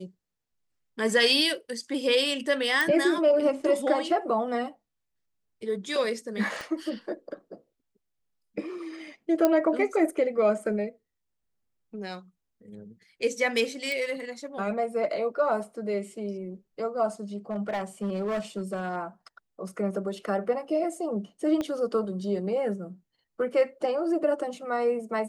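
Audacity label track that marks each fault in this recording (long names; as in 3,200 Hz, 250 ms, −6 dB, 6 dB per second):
2.810000	2.810000	click
6.610000	6.610000	click
9.450000	9.450000	click −9 dBFS
13.920000	13.920000	click −19 dBFS
17.510000	18.970000	clipping −25 dBFS
21.610000	21.610000	click −18 dBFS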